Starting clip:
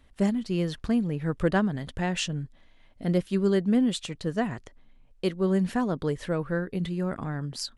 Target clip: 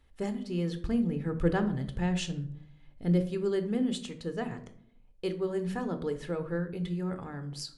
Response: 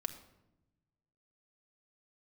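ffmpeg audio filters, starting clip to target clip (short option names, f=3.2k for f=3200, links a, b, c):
-filter_complex "[0:a]asettb=1/sr,asplit=3[a][b][c];[a]atrim=end=0.814[d];[b]atrim=start=0.81:end=3.3,asetpts=PTS-STARTPTS,afade=t=in:d=0.004:c=qsin,afade=t=out:st=2.486:d=0.004:c=qsin,lowshelf=f=210:g=7.5[e];[c]atrim=start=3.296[f];[d][e]acrossfade=d=0.004:c1=hsin:c2=qsin[g];[g][f]acrossfade=d=0.004:c1=qsin:c2=hsin[h];[1:a]atrim=start_sample=2205,asetrate=83790,aresample=44100[i];[h][i]afir=irnorm=-1:irlink=0"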